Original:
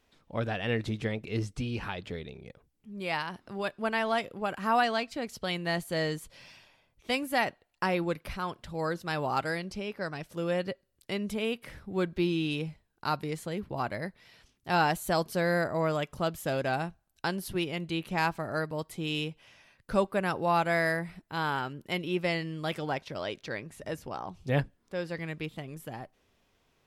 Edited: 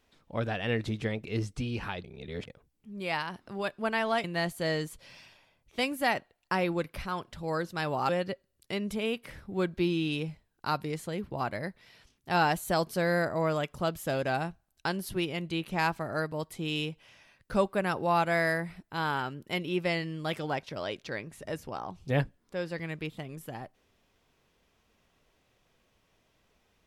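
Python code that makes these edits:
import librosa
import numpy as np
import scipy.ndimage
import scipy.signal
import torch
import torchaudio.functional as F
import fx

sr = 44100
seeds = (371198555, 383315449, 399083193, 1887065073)

y = fx.edit(x, sr, fx.reverse_span(start_s=2.04, length_s=0.43),
    fx.cut(start_s=4.24, length_s=1.31),
    fx.cut(start_s=9.4, length_s=1.08), tone=tone)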